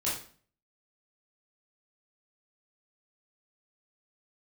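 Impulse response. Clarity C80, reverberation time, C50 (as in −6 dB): 9.0 dB, 0.45 s, 4.0 dB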